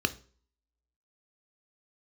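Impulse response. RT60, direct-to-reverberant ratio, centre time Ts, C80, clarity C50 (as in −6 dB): 0.45 s, 10.5 dB, 4 ms, 24.0 dB, 19.0 dB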